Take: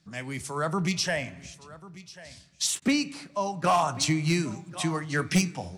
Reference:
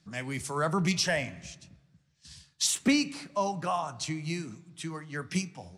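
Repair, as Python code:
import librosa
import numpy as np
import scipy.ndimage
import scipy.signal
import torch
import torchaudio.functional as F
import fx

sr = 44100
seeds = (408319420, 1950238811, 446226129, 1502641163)

y = fx.fix_declip(x, sr, threshold_db=-16.5)
y = fx.fix_interpolate(y, sr, at_s=(2.8,), length_ms=17.0)
y = fx.fix_echo_inverse(y, sr, delay_ms=1092, level_db=-18.5)
y = fx.fix_level(y, sr, at_s=3.64, step_db=-9.0)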